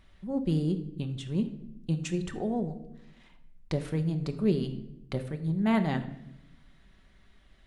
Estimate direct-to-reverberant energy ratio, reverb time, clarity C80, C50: 6.0 dB, 0.80 s, 14.0 dB, 11.5 dB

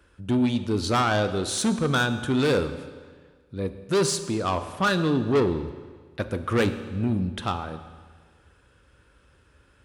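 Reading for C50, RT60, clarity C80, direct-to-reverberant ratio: 11.5 dB, 1.6 s, 12.5 dB, 9.5 dB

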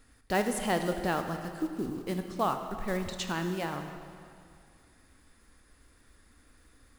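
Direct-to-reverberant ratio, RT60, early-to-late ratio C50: 6.5 dB, 2.3 s, 7.0 dB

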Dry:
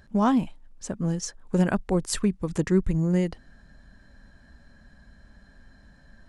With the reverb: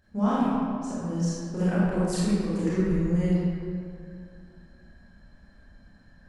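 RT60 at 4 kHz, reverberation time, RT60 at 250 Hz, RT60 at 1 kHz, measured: 1.3 s, 2.3 s, 2.4 s, 2.3 s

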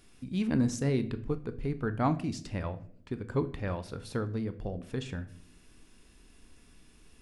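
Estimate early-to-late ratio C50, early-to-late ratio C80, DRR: 15.5 dB, 19.0 dB, 10.0 dB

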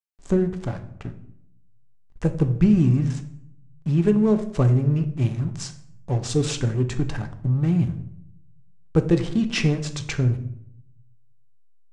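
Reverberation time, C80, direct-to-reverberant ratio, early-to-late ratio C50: 0.70 s, 15.5 dB, 7.0 dB, 12.0 dB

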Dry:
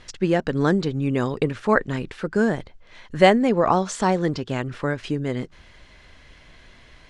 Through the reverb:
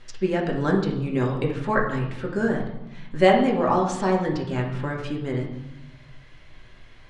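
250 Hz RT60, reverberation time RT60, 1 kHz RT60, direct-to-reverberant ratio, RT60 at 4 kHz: 1.6 s, 0.95 s, 1.0 s, -1.5 dB, 0.85 s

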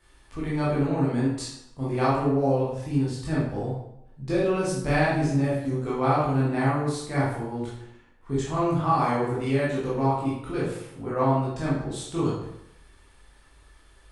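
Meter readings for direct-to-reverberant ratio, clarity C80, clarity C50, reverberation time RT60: -8.0 dB, 5.0 dB, 0.5 dB, 0.80 s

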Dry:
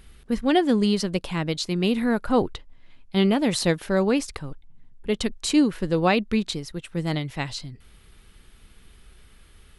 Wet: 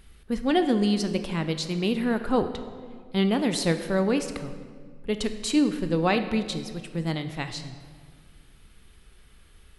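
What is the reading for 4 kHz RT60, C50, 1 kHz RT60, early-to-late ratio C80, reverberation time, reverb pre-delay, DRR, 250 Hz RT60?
1.2 s, 10.0 dB, 1.7 s, 11.0 dB, 1.8 s, 18 ms, 8.5 dB, 2.1 s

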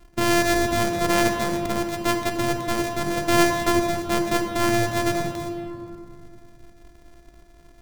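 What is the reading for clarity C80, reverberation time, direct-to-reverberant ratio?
6.5 dB, 2.5 s, 4.0 dB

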